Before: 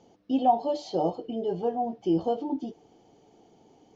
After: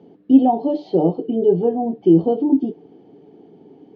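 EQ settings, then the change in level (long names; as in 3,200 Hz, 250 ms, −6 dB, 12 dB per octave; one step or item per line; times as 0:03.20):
dynamic equaliser 1,600 Hz, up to −6 dB, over −49 dBFS, Q 1.6
loudspeaker in its box 140–3,900 Hz, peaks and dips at 170 Hz +6 dB, 280 Hz +8 dB, 410 Hz +10 dB, 1,700 Hz +5 dB
low-shelf EQ 380 Hz +11.5 dB
0.0 dB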